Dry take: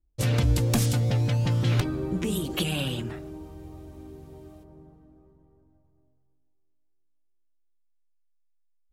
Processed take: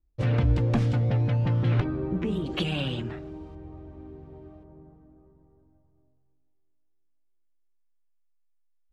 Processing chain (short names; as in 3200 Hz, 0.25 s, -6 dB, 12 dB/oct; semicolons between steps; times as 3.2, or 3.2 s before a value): LPF 2100 Hz 12 dB/oct, from 2.46 s 3800 Hz, from 3.55 s 2000 Hz